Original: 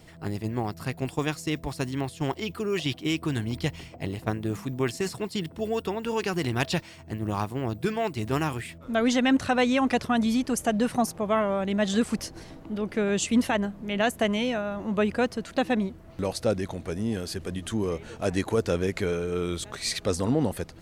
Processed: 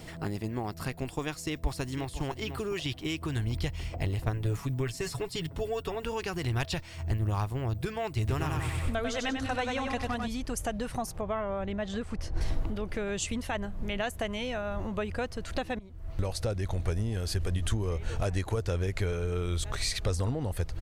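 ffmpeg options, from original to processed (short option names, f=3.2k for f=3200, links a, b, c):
-filter_complex "[0:a]asplit=2[a][b];[b]afade=t=in:st=1.38:d=0.01,afade=t=out:st=2.23:d=0.01,aecho=0:1:500|1000:0.266073|0.0399109[c];[a][c]amix=inputs=2:normalize=0,asettb=1/sr,asplit=3[d][e][f];[d]atrim=end=4.334[g];[e]atrim=start=4.33:end=6.04,asetpts=PTS-STARTPTS,afade=t=in:d=0.004:c=qsin,afade=t=out:st=1.706:d=0.004:c=qsin,aecho=1:1:7.1:0.62,atrim=end_sample=75411[h];[f]atrim=start=6.036[i];[g][h]acrossfade=d=0.004:c1=hsin:c2=qsin[j];[j][i]acrossfade=d=0.004:c1=qsin:c2=hsin,asettb=1/sr,asplit=3[k][l][m];[k]atrim=end=8.194[n];[l]atrim=start=8.19:end=10.28,asetpts=PTS-STARTPTS,afade=t=in:d=0.004:c=qsin,afade=t=out:st=2.086:d=0.004:c=qsin,aecho=1:1:95|190|285|380|475|570:0.631|0.303|0.145|0.0698|0.0335|0.0161,atrim=end_sample=92169[o];[m]atrim=start=10.276[p];[n][o]acrossfade=d=0.004:c1=hsin:c2=qsin[q];[q][p]acrossfade=d=0.004:c1=qsin:c2=hsin,asettb=1/sr,asplit=3[r][s][t];[r]atrim=end=11.214[u];[s]atrim=start=11.21:end=12.41,asetpts=PTS-STARTPTS,afade=t=in:d=0.004:c=qsin,afade=t=out:st=1.196:d=0.004:c=qsin,lowpass=f=2.1k:p=1[v];[t]atrim=start=12.406[w];[u][v]acrossfade=d=0.004:c1=hsin:c2=qsin[x];[x][w]acrossfade=d=0.004:c1=qsin:c2=hsin,asplit=2[y][z];[y]atrim=end=15.79,asetpts=PTS-STARTPTS,afade=t=out:st=15.786:d=0.004:c=hsin:silence=0.112202[aa];[z]atrim=start=15.79,asetpts=PTS-STARTPTS,afade=t=in:d=0.84:silence=0.112202[ab];[aa][ab]concat=n=2:v=0:a=1,acompressor=threshold=-39dB:ratio=3,asubboost=boost=11:cutoff=65,volume=6.5dB"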